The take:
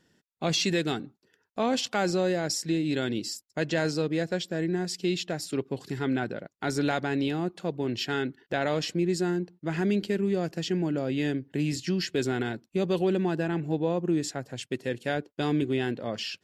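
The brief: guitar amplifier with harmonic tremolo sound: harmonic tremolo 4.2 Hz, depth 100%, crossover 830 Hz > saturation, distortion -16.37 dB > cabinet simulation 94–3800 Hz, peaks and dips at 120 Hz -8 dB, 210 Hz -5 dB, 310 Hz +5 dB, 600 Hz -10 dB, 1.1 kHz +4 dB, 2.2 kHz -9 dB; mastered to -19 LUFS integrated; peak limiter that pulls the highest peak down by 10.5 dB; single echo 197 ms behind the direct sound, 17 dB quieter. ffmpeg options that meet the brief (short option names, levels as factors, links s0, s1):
-filter_complex "[0:a]alimiter=limit=0.0668:level=0:latency=1,aecho=1:1:197:0.141,acrossover=split=830[s0][s1];[s0]aeval=exprs='val(0)*(1-1/2+1/2*cos(2*PI*4.2*n/s))':c=same[s2];[s1]aeval=exprs='val(0)*(1-1/2-1/2*cos(2*PI*4.2*n/s))':c=same[s3];[s2][s3]amix=inputs=2:normalize=0,asoftclip=threshold=0.0376,highpass=94,equalizer=f=120:t=q:w=4:g=-8,equalizer=f=210:t=q:w=4:g=-5,equalizer=f=310:t=q:w=4:g=5,equalizer=f=600:t=q:w=4:g=-10,equalizer=f=1100:t=q:w=4:g=4,equalizer=f=2200:t=q:w=4:g=-9,lowpass=f=3800:w=0.5412,lowpass=f=3800:w=1.3066,volume=11.2"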